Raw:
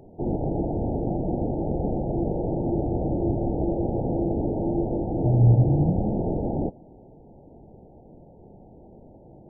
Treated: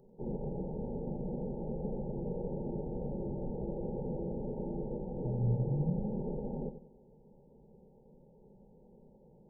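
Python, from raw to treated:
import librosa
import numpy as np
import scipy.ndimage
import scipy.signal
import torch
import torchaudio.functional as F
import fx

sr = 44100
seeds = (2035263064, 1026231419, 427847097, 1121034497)

p1 = fx.fixed_phaser(x, sr, hz=460.0, stages=8)
p2 = p1 + fx.echo_feedback(p1, sr, ms=92, feedback_pct=31, wet_db=-11.0, dry=0)
y = F.gain(torch.from_numpy(p2), -8.5).numpy()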